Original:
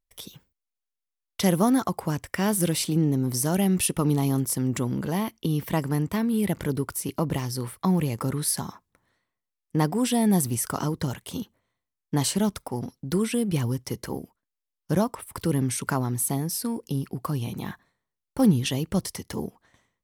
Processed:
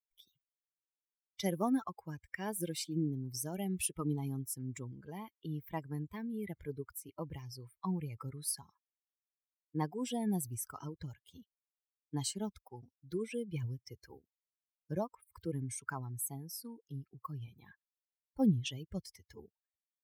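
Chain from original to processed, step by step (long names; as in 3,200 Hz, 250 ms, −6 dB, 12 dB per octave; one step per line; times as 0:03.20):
spectral dynamics exaggerated over time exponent 2
level −7.5 dB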